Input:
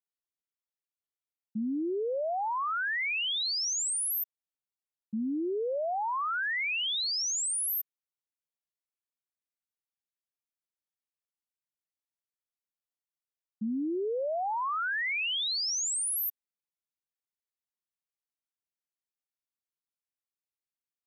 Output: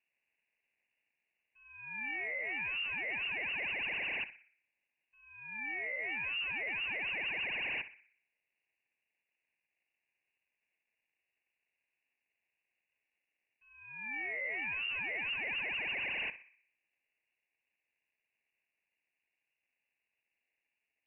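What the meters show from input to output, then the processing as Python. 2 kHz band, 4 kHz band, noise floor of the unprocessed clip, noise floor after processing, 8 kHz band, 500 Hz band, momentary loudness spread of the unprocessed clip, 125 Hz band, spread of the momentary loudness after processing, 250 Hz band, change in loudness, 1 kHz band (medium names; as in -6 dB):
-0.5 dB, -11.0 dB, under -85 dBFS, under -85 dBFS, under -40 dB, -15.5 dB, 6 LU, no reading, 10 LU, -20.0 dB, -6.0 dB, -16.0 dB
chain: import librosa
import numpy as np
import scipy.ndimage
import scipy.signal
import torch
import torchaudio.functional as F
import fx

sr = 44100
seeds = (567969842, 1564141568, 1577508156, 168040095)

p1 = scipy.signal.sosfilt(scipy.signal.butter(4, 450.0, 'highpass', fs=sr, output='sos'), x)
p2 = fx.tilt_eq(p1, sr, slope=3.0)
p3 = fx.rider(p2, sr, range_db=3, speed_s=2.0)
p4 = p2 + (p3 * librosa.db_to_amplitude(-3.0))
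p5 = fx.sample_hold(p4, sr, seeds[0], rate_hz=1500.0, jitter_pct=0)
p6 = np.clip(p5, -10.0 ** (-30.0 / 20.0), 10.0 ** (-30.0 / 20.0))
p7 = fx.echo_tape(p6, sr, ms=60, feedback_pct=57, wet_db=-7.5, lp_hz=1600.0, drive_db=32.0, wow_cents=31)
p8 = fx.freq_invert(p7, sr, carrier_hz=2800)
y = p8 * librosa.db_to_amplitude(-7.0)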